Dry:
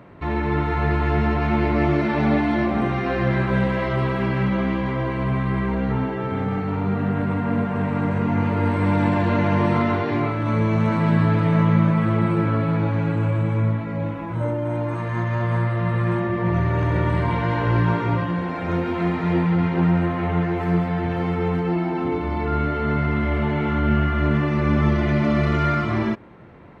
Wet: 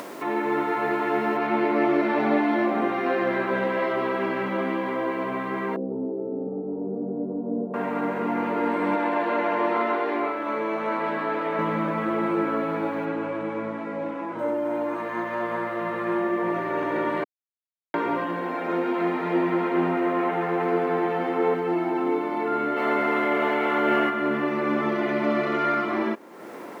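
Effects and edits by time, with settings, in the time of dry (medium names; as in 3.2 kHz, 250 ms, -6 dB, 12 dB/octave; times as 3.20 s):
1.37 s: noise floor step -52 dB -59 dB
5.76–7.74 s: inverse Chebyshev low-pass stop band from 2.4 kHz, stop band 70 dB
8.95–11.59 s: tone controls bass -13 dB, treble -4 dB
13.05–14.39 s: distance through air 61 m
17.24–17.94 s: mute
19.30–21.54 s: feedback echo behind a low-pass 100 ms, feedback 71%, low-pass 2.6 kHz, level -4.5 dB
22.76–24.09 s: spectral peaks clipped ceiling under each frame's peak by 13 dB
whole clip: high-pass 270 Hz 24 dB/octave; treble shelf 3.7 kHz -10.5 dB; upward compressor, threshold -29 dBFS; trim +1 dB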